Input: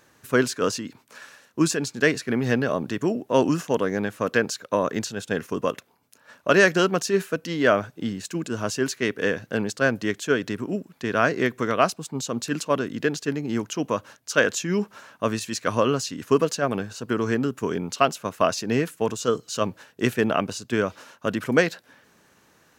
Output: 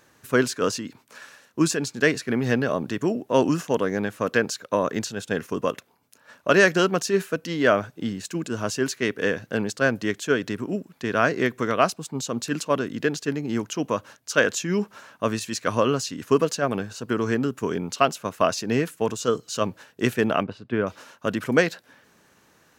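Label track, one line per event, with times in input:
20.430000	20.870000	high-frequency loss of the air 420 metres

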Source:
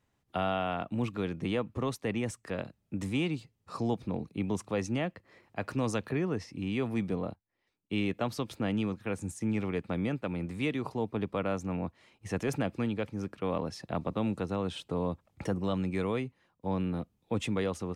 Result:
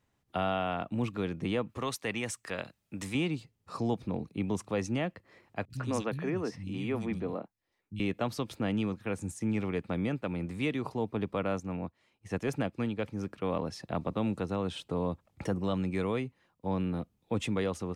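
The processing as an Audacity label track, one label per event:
1.690000	3.150000	tilt shelving filter lows −6 dB, about 760 Hz
5.650000	8.000000	three-band delay without the direct sound lows, highs, mids 50/120 ms, splits 180/3,000 Hz
11.600000	12.990000	expander for the loud parts, over −46 dBFS

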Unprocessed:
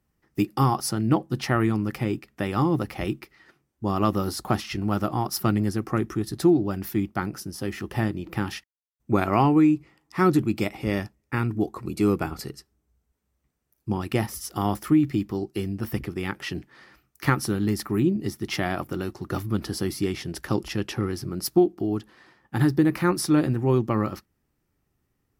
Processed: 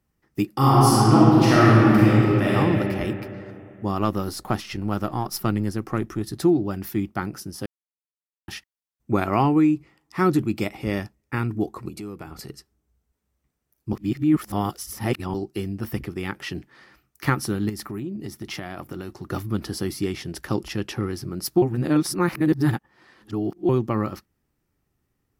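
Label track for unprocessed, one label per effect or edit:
0.560000	2.540000	thrown reverb, RT60 2.9 s, DRR −8.5 dB
3.970000	6.210000	gain on one half-wave negative side −3 dB
7.660000	8.480000	silence
11.880000	12.490000	downward compressor 4 to 1, threshold −34 dBFS
13.930000	15.340000	reverse
17.690000	19.270000	downward compressor 4 to 1, threshold −29 dBFS
21.620000	23.690000	reverse

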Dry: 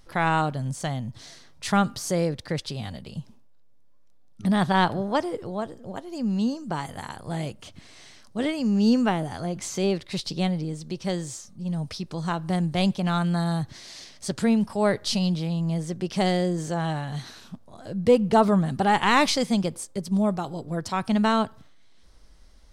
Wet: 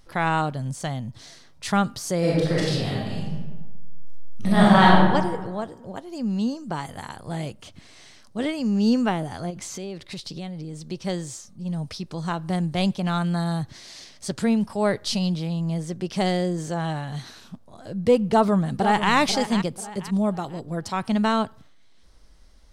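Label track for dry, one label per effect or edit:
2.190000	4.980000	thrown reverb, RT60 1.3 s, DRR −7 dB
9.500000	10.910000	downward compressor 5 to 1, threshold −31 dBFS
18.220000	19.120000	delay throw 490 ms, feedback 35%, level −10 dB

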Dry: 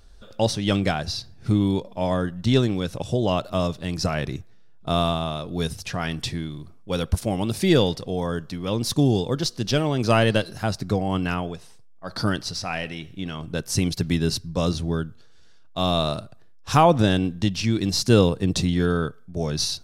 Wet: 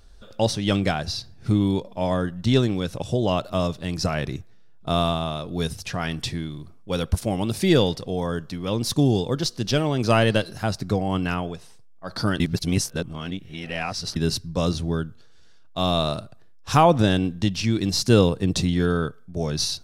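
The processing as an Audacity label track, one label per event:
12.400000	14.160000	reverse

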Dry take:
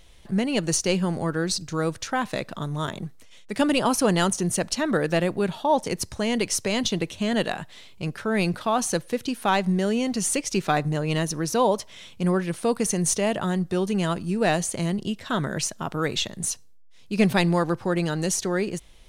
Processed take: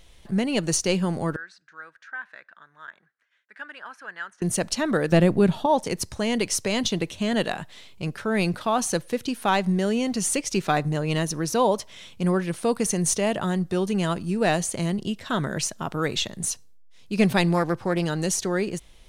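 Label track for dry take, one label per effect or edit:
1.360000	4.420000	resonant band-pass 1,600 Hz, Q 7.3
5.120000	5.660000	low-shelf EQ 370 Hz +10 dB
17.540000	18.040000	highs frequency-modulated by the lows depth 0.16 ms

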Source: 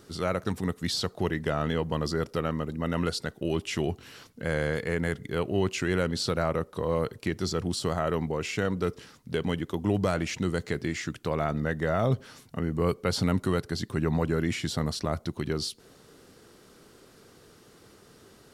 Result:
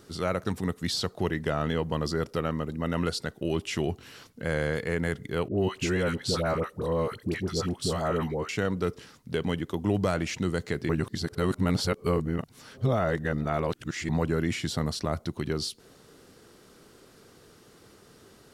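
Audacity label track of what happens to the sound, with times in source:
5.480000	8.490000	all-pass dispersion highs, late by 90 ms, half as late at 800 Hz
10.890000	14.090000	reverse

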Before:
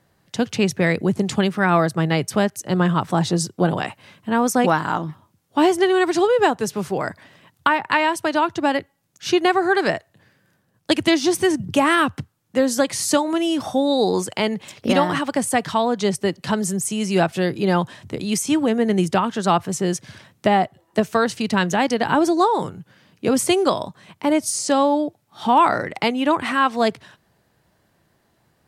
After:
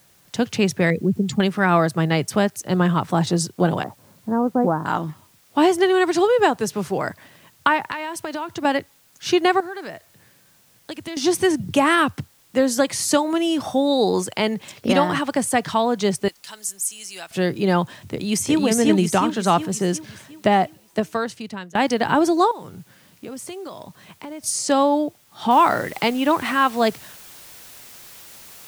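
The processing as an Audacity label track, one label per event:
0.900000	1.400000	expanding power law on the bin magnitudes exponent 1.8
2.700000	3.270000	de-essing amount 75%
3.830000	4.860000	Gaussian smoothing sigma 7.8 samples
7.890000	8.650000	downward compressor, threshold −24 dBFS
9.600000	11.170000	downward compressor 2.5 to 1, threshold −36 dBFS
16.280000	17.310000	first difference
17.990000	18.610000	delay throw 360 ms, feedback 50%, level −0.5 dB
20.640000	21.750000	fade out, to −23.5 dB
22.510000	24.440000	downward compressor 4 to 1, threshold −34 dBFS
25.510000	25.510000	noise floor change −57 dB −43 dB

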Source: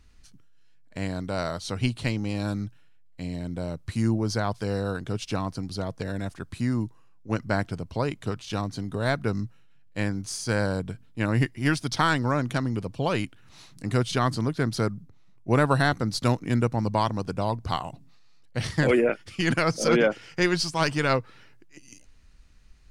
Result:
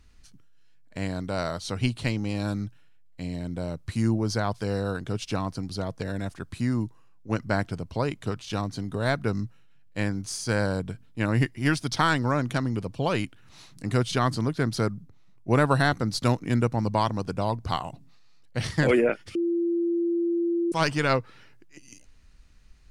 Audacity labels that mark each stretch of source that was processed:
19.350000	20.720000	beep over 341 Hz −22 dBFS

